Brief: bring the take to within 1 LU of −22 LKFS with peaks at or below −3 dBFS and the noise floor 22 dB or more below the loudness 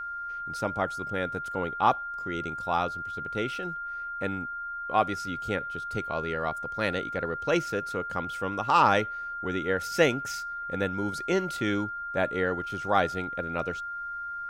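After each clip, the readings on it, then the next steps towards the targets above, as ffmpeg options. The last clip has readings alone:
interfering tone 1,400 Hz; level of the tone −33 dBFS; integrated loudness −29.5 LKFS; sample peak −8.0 dBFS; target loudness −22.0 LKFS
→ -af "bandreject=frequency=1400:width=30"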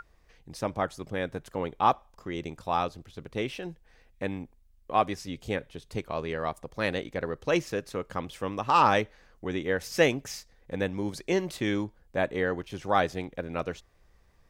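interfering tone none found; integrated loudness −30.5 LKFS; sample peak −8.5 dBFS; target loudness −22.0 LKFS
→ -af "volume=8.5dB,alimiter=limit=-3dB:level=0:latency=1"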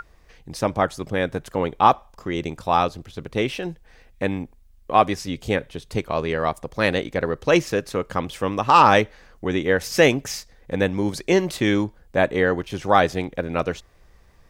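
integrated loudness −22.0 LKFS; sample peak −3.0 dBFS; background noise floor −52 dBFS

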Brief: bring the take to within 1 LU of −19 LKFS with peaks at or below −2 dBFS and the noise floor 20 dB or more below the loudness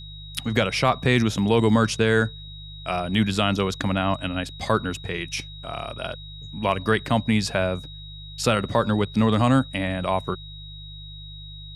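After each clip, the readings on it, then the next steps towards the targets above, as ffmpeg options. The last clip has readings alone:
mains hum 50 Hz; hum harmonics up to 150 Hz; level of the hum −40 dBFS; interfering tone 3,800 Hz; level of the tone −41 dBFS; integrated loudness −23.5 LKFS; sample peak −5.5 dBFS; target loudness −19.0 LKFS
→ -af "bandreject=frequency=50:width_type=h:width=4,bandreject=frequency=100:width_type=h:width=4,bandreject=frequency=150:width_type=h:width=4"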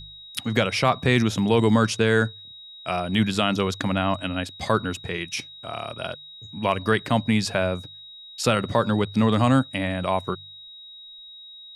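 mains hum none found; interfering tone 3,800 Hz; level of the tone −41 dBFS
→ -af "bandreject=frequency=3800:width=30"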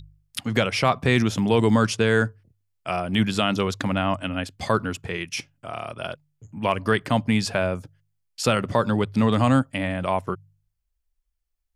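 interfering tone none found; integrated loudness −23.5 LKFS; sample peak −5.5 dBFS; target loudness −19.0 LKFS
→ -af "volume=4.5dB,alimiter=limit=-2dB:level=0:latency=1"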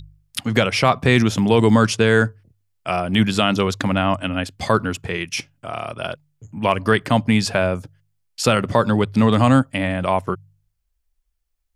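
integrated loudness −19.0 LKFS; sample peak −2.0 dBFS; background noise floor −71 dBFS

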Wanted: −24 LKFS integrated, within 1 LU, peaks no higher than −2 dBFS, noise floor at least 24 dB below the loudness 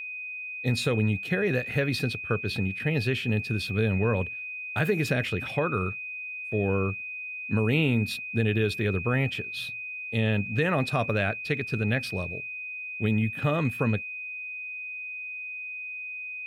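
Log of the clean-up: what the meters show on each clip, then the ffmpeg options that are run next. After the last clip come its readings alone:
interfering tone 2,500 Hz; level of the tone −34 dBFS; integrated loudness −28.0 LKFS; sample peak −13.0 dBFS; target loudness −24.0 LKFS
→ -af "bandreject=frequency=2500:width=30"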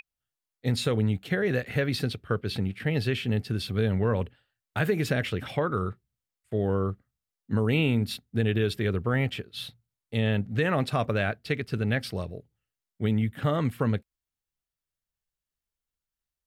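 interfering tone none found; integrated loudness −28.0 LKFS; sample peak −13.5 dBFS; target loudness −24.0 LKFS
→ -af "volume=4dB"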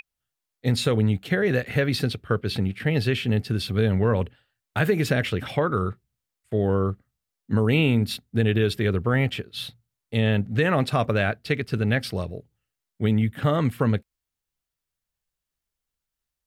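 integrated loudness −24.0 LKFS; sample peak −9.5 dBFS; background noise floor −86 dBFS

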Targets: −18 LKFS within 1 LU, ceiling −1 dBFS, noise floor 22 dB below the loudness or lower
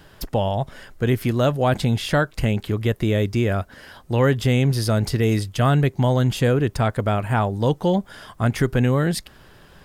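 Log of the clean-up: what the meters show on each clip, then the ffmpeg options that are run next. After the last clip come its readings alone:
integrated loudness −21.5 LKFS; sample peak −6.5 dBFS; target loudness −18.0 LKFS
→ -af "volume=3.5dB"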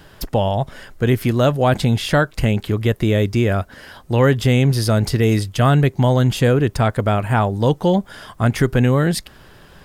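integrated loudness −18.0 LKFS; sample peak −3.0 dBFS; background noise floor −46 dBFS

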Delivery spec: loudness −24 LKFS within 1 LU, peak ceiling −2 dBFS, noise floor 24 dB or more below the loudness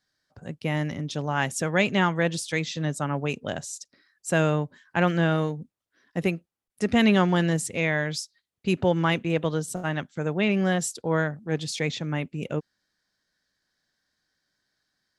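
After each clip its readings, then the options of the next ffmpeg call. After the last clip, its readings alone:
integrated loudness −26.0 LKFS; sample peak −9.0 dBFS; target loudness −24.0 LKFS
→ -af "volume=2dB"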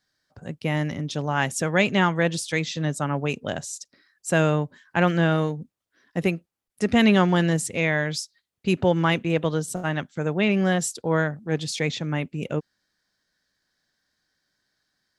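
integrated loudness −24.0 LKFS; sample peak −7.0 dBFS; background noise floor −82 dBFS

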